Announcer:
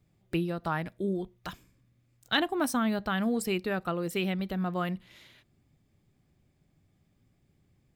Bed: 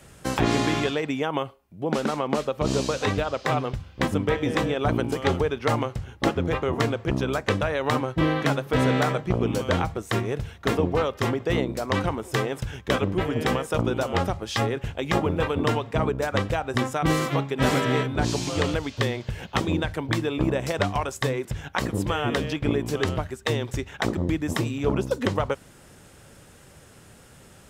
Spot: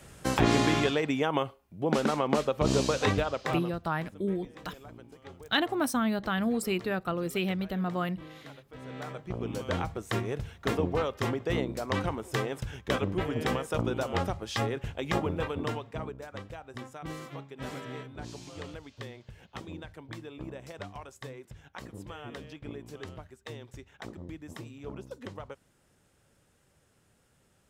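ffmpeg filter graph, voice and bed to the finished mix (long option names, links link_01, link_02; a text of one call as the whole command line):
ffmpeg -i stem1.wav -i stem2.wav -filter_complex "[0:a]adelay=3200,volume=0dB[link_01];[1:a]volume=18dB,afade=type=out:start_time=3.11:duration=0.75:silence=0.0668344,afade=type=in:start_time=8.81:duration=1.24:silence=0.105925,afade=type=out:start_time=15.11:duration=1.14:silence=0.251189[link_02];[link_01][link_02]amix=inputs=2:normalize=0" out.wav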